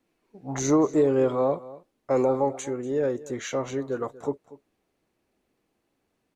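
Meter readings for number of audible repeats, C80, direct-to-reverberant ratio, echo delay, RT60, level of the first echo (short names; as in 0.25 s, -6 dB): 1, none, none, 0.24 s, none, -18.5 dB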